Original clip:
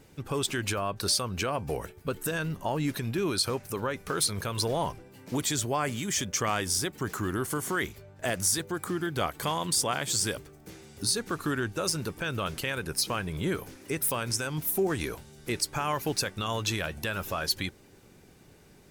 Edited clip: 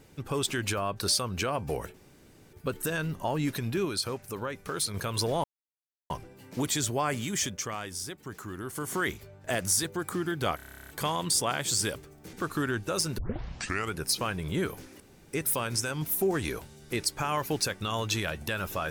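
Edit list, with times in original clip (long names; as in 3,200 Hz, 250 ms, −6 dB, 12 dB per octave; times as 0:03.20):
0:01.94: splice in room tone 0.59 s
0:03.26–0:04.35: clip gain −3.5 dB
0:04.85: splice in silence 0.66 s
0:06.15–0:07.71: duck −8.5 dB, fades 0.45 s quadratic
0:09.31: stutter 0.03 s, 12 plays
0:10.75–0:11.22: remove
0:12.07: tape start 0.79 s
0:13.89: splice in room tone 0.33 s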